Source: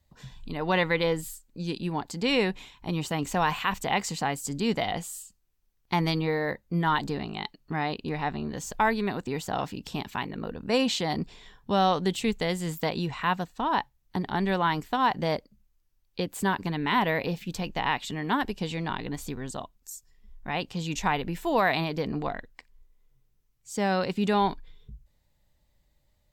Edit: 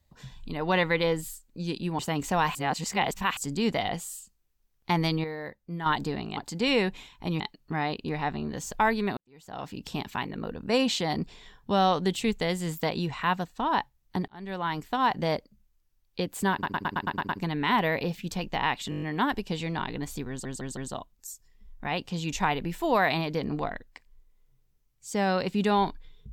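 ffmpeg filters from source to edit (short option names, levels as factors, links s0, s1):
-filter_complex "[0:a]asplit=26[s0][s1][s2][s3][s4][s5][s6][s7][s8][s9][s10][s11][s12][s13][s14][s15][s16][s17][s18][s19][s20][s21][s22][s23][s24][s25];[s0]atrim=end=1.992[s26];[s1]atrim=start=3.018:end=3.582[s27];[s2]atrim=start=3.578:end=4.402,asetpts=PTS-STARTPTS,areverse[s28];[s3]atrim=start=4.398:end=6.272[s29];[s4]atrim=start=6.268:end=6.892,asetpts=PTS-STARTPTS,volume=0.376[s30];[s5]atrim=start=6.888:end=7.402[s31];[s6]atrim=start=1.988:end=3.022[s32];[s7]atrim=start=7.398:end=9.17,asetpts=PTS-STARTPTS,afade=t=out:st=1.768:d=0.004:c=hsin[s33];[s8]atrim=start=9.17:end=14.28,asetpts=PTS-STARTPTS,afade=t=in:d=0.65:c=qua,afade=t=out:st=5.106:d=0.004:c=hsin[s34];[s9]atrim=start=14.28:end=16.632,asetpts=PTS-STARTPTS,afade=t=in:d=1.01:c=qsin[s35];[s10]atrim=start=16.518:end=16.632[s36];[s11]atrim=start=16.518:end=16.632[s37];[s12]atrim=start=16.518:end=16.632[s38];[s13]atrim=start=16.518:end=16.632[s39];[s14]atrim=start=16.518:end=16.632[s40];[s15]atrim=start=16.518:end=16.632[s41];[s16]atrim=start=16.518:end=18.152[s42];[s17]atrim=start=18.128:end=18.152[s43];[s18]atrim=start=18.128:end=18.152[s44];[s19]atrim=start=18.128:end=18.152[s45];[s20]atrim=start=18.128:end=18.152[s46];[s21]atrim=start=18.128:end=18.152[s47];[s22]atrim=start=18.128:end=19.562[s48];[s23]atrim=start=19.398:end=19.562[s49];[s24]atrim=start=19.398:end=19.562[s50];[s25]atrim=start=19.398[s51];[s26][s27]acrossfade=d=0.004:c1=hsin:c2=hsin[s52];[s52][s28]acrossfade=d=0.004:c1=hsin:c2=hsin[s53];[s53][s29]acrossfade=d=0.004:c1=hsin:c2=hsin[s54];[s54][s30]acrossfade=d=0.004:c1=hsin:c2=hsin[s55];[s55][s31]acrossfade=d=0.004:c1=hsin:c2=hsin[s56];[s56][s32]acrossfade=d=0.004:c1=hsin:c2=hsin[s57];[s33][s34][s35]concat=n=3:v=0:a=1[s58];[s57][s58]acrossfade=d=0.004:c1=hsin:c2=hsin[s59];[s59][s36]acrossfade=d=0.004:c1=hsin:c2=hsin[s60];[s60][s37]acrossfade=d=0.004:c1=hsin:c2=hsin[s61];[s61][s38]acrossfade=d=0.004:c1=hsin:c2=hsin[s62];[s62][s39]acrossfade=d=0.004:c1=hsin:c2=hsin[s63];[s63][s40]acrossfade=d=0.004:c1=hsin:c2=hsin[s64];[s64][s41]acrossfade=d=0.004:c1=hsin:c2=hsin[s65];[s65][s42]acrossfade=d=0.004:c1=hsin:c2=hsin[s66];[s66][s43]acrossfade=d=0.004:c1=hsin:c2=hsin[s67];[s67][s44]acrossfade=d=0.004:c1=hsin:c2=hsin[s68];[s68][s45]acrossfade=d=0.004:c1=hsin:c2=hsin[s69];[s69][s46]acrossfade=d=0.004:c1=hsin:c2=hsin[s70];[s70][s47]acrossfade=d=0.004:c1=hsin:c2=hsin[s71];[s71][s48]acrossfade=d=0.004:c1=hsin:c2=hsin[s72];[s72][s49]acrossfade=d=0.004:c1=hsin:c2=hsin[s73];[s73][s50]acrossfade=d=0.004:c1=hsin:c2=hsin[s74];[s74][s51]acrossfade=d=0.004:c1=hsin:c2=hsin"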